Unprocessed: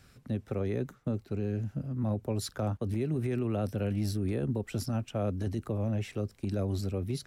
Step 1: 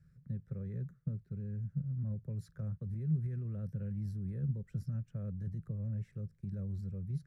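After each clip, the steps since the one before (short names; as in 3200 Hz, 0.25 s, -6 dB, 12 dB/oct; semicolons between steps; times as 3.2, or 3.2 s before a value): EQ curve 100 Hz 0 dB, 160 Hz +9 dB, 280 Hz -18 dB, 520 Hz -11 dB, 740 Hz -26 dB, 1700 Hz -9 dB, 2800 Hz -25 dB, 5700 Hz -19 dB; gain -6 dB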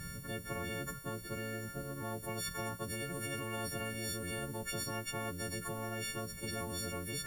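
frequency quantiser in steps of 4 st; spectral compressor 10:1; gain -1.5 dB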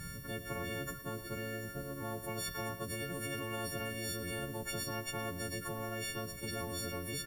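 echo 0.112 s -12 dB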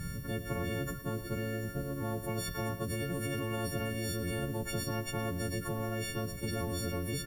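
low shelf 480 Hz +8 dB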